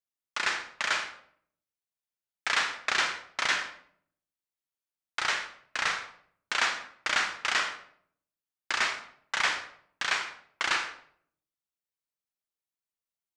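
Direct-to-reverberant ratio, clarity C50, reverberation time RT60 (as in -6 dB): 6.0 dB, 8.5 dB, 0.60 s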